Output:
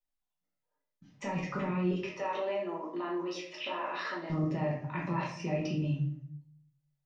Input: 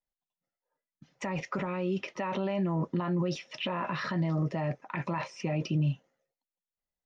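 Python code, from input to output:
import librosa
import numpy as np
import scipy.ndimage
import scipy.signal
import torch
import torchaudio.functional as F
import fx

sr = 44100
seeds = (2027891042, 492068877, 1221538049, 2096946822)

y = fx.highpass(x, sr, hz=350.0, slope=24, at=(1.91, 4.3))
y = fx.room_shoebox(y, sr, seeds[0], volume_m3=100.0, walls='mixed', distance_m=1.2)
y = F.gain(torch.from_numpy(y), -6.5).numpy()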